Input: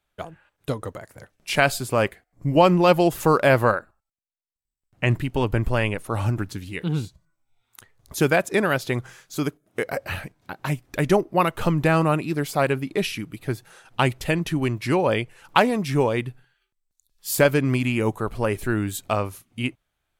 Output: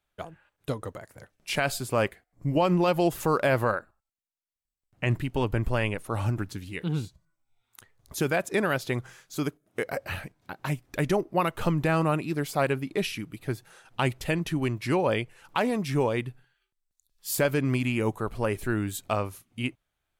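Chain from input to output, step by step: limiter -9.5 dBFS, peak gain reduction 7.5 dB; gain -4 dB

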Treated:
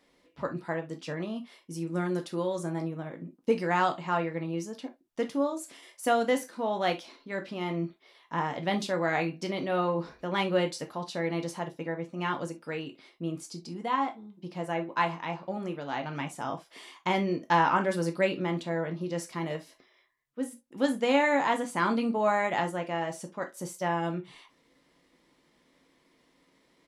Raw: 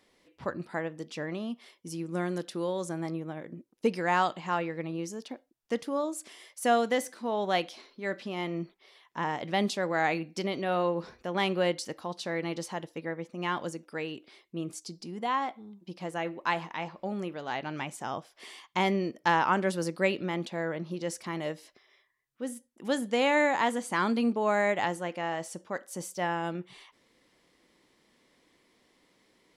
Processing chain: high shelf 2400 Hz -3.5 dB; tempo 1.1×; non-linear reverb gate 90 ms falling, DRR 4 dB

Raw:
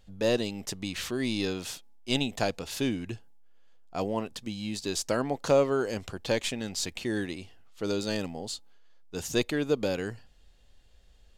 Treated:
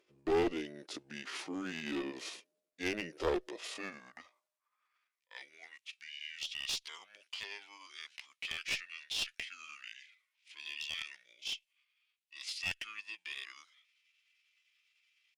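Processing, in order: delay-line pitch shifter -5.5 st; high-pass sweep 360 Hz -> 2500 Hz, 2.47–4.17; one-sided clip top -28 dBFS, bottom -15 dBFS; bell 140 Hz -2.5 dB 1.3 oct; tempo 0.74×; gain -5.5 dB

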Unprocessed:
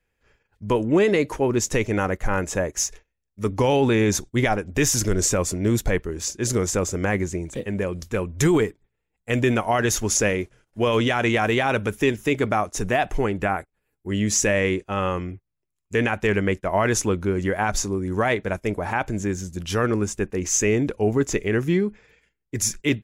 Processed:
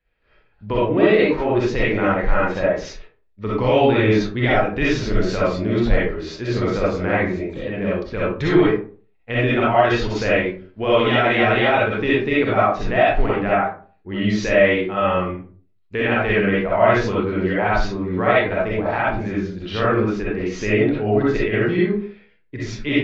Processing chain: elliptic low-pass 4300 Hz, stop band 70 dB; digital reverb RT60 0.42 s, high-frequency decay 0.5×, pre-delay 20 ms, DRR -8 dB; gain -3 dB

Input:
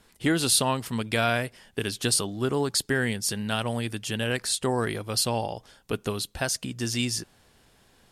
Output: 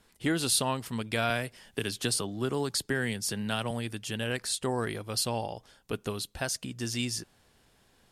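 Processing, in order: 1.3–3.71 three-band squash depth 40%; gain -4.5 dB

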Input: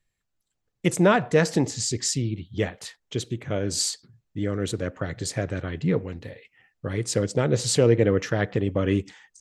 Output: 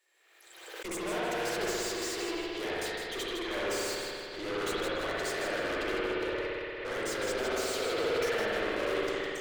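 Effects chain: steep high-pass 330 Hz 96 dB/oct; limiter -18.5 dBFS, peak gain reduction 10 dB; tube stage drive 45 dB, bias 0.7; thin delay 0.158 s, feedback 33%, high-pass 1800 Hz, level -7 dB; spring tank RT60 2.8 s, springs 57 ms, chirp 25 ms, DRR -7.5 dB; backwards sustainer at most 45 dB/s; gain +6.5 dB

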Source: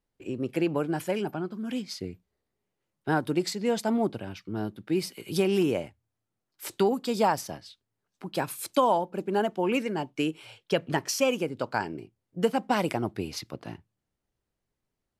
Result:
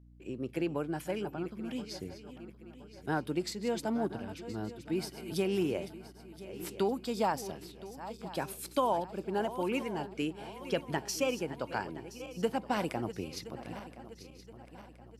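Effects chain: regenerating reverse delay 0.511 s, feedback 66%, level -13 dB; hum 60 Hz, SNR 21 dB; gain -6.5 dB

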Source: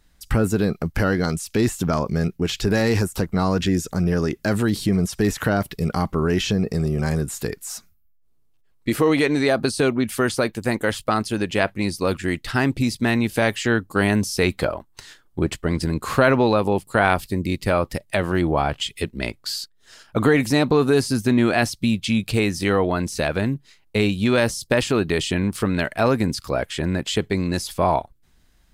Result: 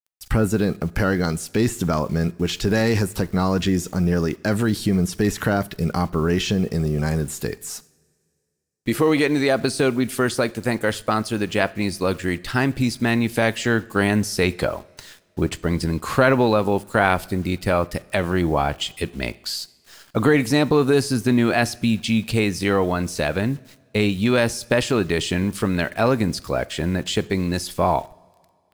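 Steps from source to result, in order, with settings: requantised 8-bit, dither none; two-slope reverb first 0.56 s, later 2.4 s, from -17 dB, DRR 17.5 dB

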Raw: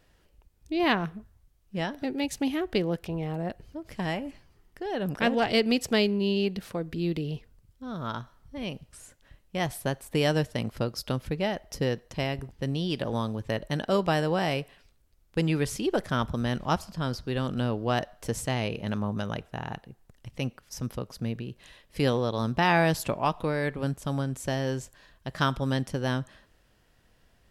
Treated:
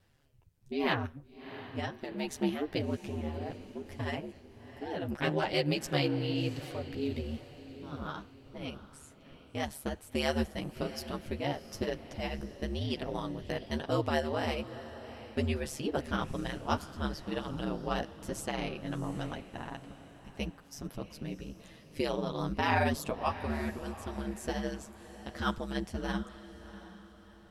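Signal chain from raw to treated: ring modulator 73 Hz; chorus voices 2, 1 Hz, delay 11 ms, depth 3.7 ms; diffused feedback echo 0.701 s, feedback 41%, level -14 dB

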